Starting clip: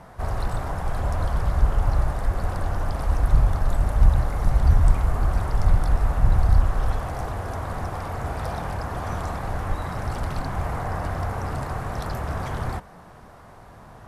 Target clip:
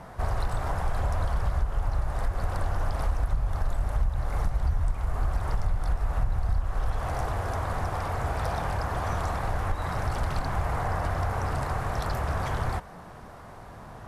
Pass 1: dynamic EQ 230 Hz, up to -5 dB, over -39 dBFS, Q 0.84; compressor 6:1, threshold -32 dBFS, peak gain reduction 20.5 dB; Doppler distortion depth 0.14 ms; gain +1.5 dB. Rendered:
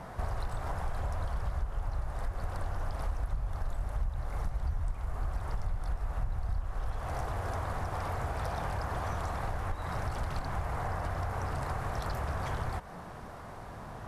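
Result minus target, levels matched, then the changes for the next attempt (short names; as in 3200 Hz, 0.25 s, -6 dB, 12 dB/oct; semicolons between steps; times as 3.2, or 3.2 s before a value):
compressor: peak gain reduction +7 dB
change: compressor 6:1, threshold -23.5 dBFS, peak gain reduction 13.5 dB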